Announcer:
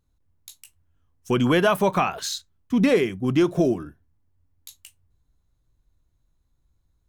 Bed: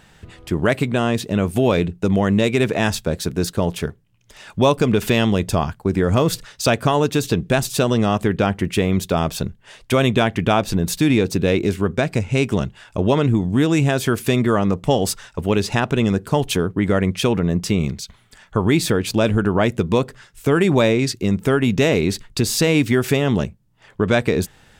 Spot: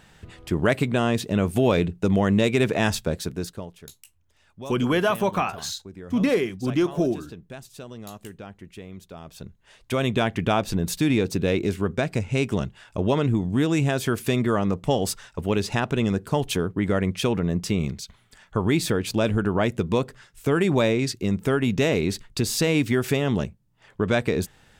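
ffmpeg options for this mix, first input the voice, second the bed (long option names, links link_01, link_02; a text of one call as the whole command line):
ffmpeg -i stem1.wav -i stem2.wav -filter_complex "[0:a]adelay=3400,volume=-2.5dB[link_01];[1:a]volume=14dB,afade=type=out:start_time=3.01:duration=0.7:silence=0.112202,afade=type=in:start_time=9.24:duration=1.05:silence=0.141254[link_02];[link_01][link_02]amix=inputs=2:normalize=0" out.wav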